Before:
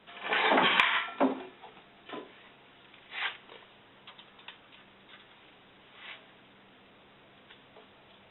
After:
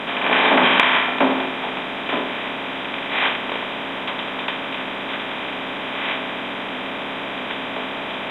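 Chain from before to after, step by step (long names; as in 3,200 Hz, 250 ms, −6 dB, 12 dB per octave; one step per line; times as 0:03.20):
compressor on every frequency bin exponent 0.4
level +5.5 dB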